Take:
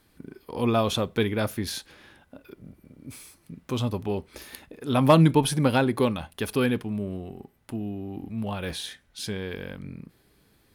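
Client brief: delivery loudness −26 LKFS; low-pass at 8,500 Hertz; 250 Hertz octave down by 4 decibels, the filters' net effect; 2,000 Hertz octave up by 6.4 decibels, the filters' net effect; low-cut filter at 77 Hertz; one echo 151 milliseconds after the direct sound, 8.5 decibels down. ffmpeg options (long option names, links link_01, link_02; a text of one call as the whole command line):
ffmpeg -i in.wav -af "highpass=77,lowpass=8500,equalizer=frequency=250:width_type=o:gain=-5.5,equalizer=frequency=2000:width_type=o:gain=9,aecho=1:1:151:0.376" out.wav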